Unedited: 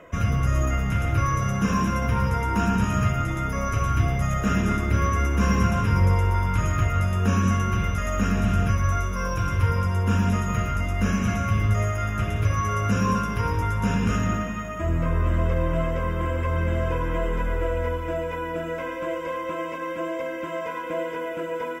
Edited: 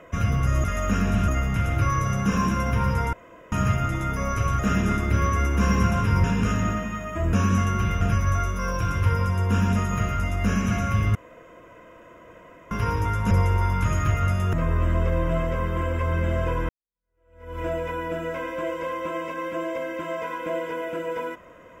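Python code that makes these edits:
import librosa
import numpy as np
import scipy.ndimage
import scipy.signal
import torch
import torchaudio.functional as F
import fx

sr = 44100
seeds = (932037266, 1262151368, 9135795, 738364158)

y = fx.edit(x, sr, fx.room_tone_fill(start_s=2.49, length_s=0.39),
    fx.cut(start_s=3.95, length_s=0.44),
    fx.swap(start_s=6.04, length_s=1.22, other_s=13.88, other_length_s=1.09),
    fx.move(start_s=7.94, length_s=0.64, to_s=0.64),
    fx.room_tone_fill(start_s=11.72, length_s=1.56),
    fx.fade_in_span(start_s=17.13, length_s=0.9, curve='exp'), tone=tone)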